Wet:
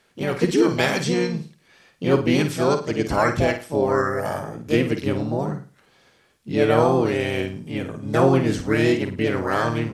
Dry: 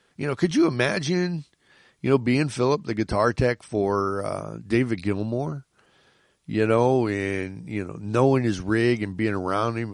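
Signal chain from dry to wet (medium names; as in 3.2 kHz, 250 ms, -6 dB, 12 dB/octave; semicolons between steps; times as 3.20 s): harmony voices -4 st -17 dB, +5 st -3 dB; flutter echo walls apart 9 m, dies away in 0.35 s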